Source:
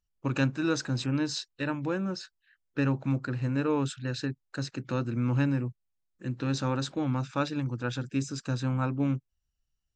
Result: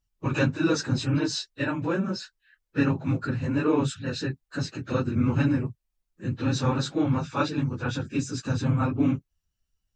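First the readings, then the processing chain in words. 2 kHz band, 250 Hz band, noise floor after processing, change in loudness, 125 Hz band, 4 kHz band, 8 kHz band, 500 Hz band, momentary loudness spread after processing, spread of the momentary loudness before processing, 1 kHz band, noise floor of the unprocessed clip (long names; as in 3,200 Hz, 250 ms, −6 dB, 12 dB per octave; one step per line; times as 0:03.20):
+3.5 dB, +4.0 dB, −80 dBFS, +3.5 dB, +3.0 dB, +3.5 dB, +3.5 dB, +4.0 dB, 9 LU, 8 LU, +3.5 dB, −81 dBFS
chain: random phases in long frames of 50 ms
level +3.5 dB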